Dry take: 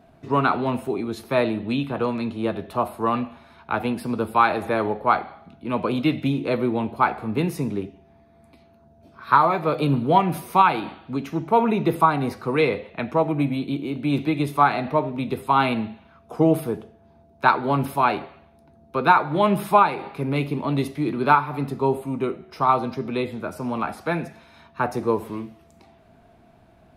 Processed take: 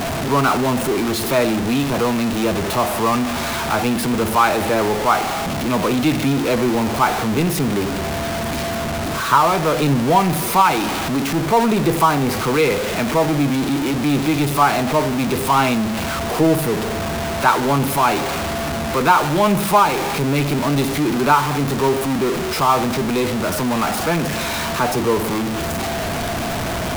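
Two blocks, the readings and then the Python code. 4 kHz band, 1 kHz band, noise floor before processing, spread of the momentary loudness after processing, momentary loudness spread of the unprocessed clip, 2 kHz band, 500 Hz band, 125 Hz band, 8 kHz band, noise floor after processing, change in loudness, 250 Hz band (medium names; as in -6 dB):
+12.0 dB, +3.5 dB, -55 dBFS, 7 LU, 11 LU, +6.0 dB, +5.0 dB, +6.0 dB, no reading, -23 dBFS, +4.5 dB, +6.0 dB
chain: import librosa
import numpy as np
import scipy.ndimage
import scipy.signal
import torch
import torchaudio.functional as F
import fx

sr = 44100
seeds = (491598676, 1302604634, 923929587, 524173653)

y = x + 0.5 * 10.0 ** (-17.0 / 20.0) * np.sign(x)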